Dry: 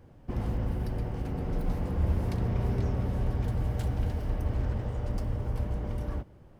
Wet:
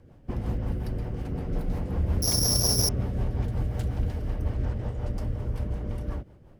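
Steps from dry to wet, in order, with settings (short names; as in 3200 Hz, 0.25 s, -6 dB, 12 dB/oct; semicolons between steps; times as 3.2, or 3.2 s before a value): 2.22–2.89 careless resampling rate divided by 8×, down none, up zero stuff; rotary speaker horn 5.5 Hz; slew limiter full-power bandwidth 650 Hz; gain +2.5 dB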